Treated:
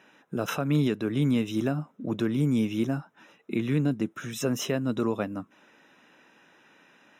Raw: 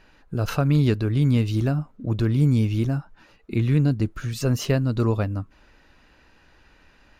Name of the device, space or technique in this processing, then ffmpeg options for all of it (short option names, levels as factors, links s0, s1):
PA system with an anti-feedback notch: -af "highpass=f=170:w=0.5412,highpass=f=170:w=1.3066,asuperstop=centerf=4500:order=12:qfactor=4.6,alimiter=limit=0.158:level=0:latency=1:release=195"